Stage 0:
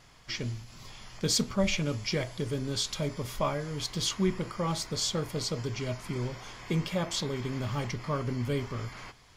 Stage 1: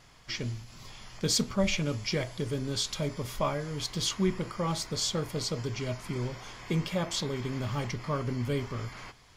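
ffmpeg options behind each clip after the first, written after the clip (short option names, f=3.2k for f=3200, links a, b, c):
-af anull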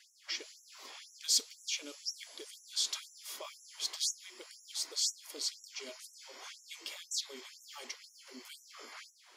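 -filter_complex "[0:a]acrossover=split=130|3000[a][b][c];[b]acompressor=threshold=-44dB:ratio=10[d];[a][d][c]amix=inputs=3:normalize=0,afftfilt=real='re*gte(b*sr/1024,240*pow(5600/240,0.5+0.5*sin(2*PI*2*pts/sr)))':imag='im*gte(b*sr/1024,240*pow(5600/240,0.5+0.5*sin(2*PI*2*pts/sr)))':win_size=1024:overlap=0.75"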